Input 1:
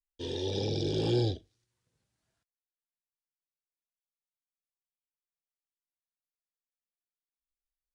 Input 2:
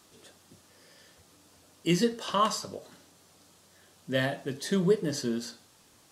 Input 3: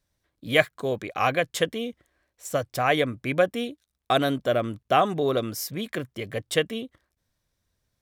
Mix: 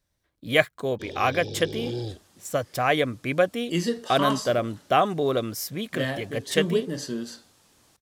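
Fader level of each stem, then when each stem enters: -4.0 dB, -0.5 dB, 0.0 dB; 0.80 s, 1.85 s, 0.00 s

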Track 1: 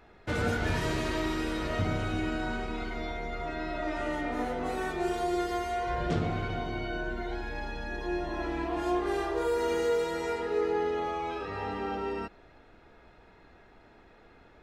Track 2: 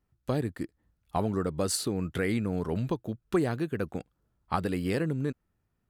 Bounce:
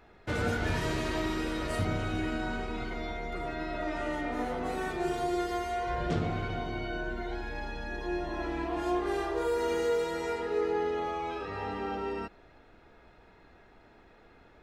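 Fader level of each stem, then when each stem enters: -1.0 dB, -18.0 dB; 0.00 s, 0.00 s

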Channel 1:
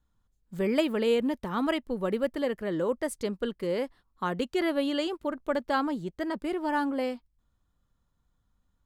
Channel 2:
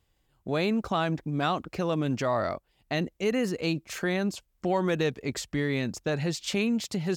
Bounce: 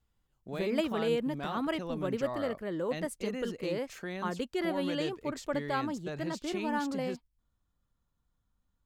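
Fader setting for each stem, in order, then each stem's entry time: -5.0 dB, -11.0 dB; 0.00 s, 0.00 s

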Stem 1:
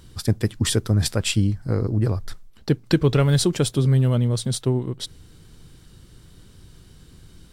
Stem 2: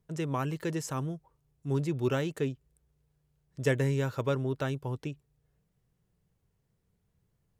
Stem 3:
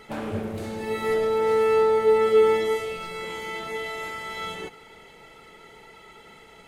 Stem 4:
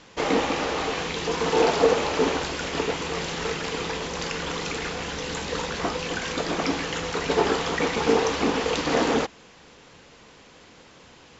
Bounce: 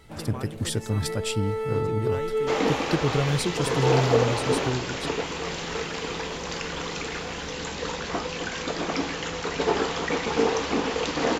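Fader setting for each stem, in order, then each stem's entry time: -7.0 dB, -6.5 dB, -9.0 dB, -2.0 dB; 0.00 s, 0.00 s, 0.00 s, 2.30 s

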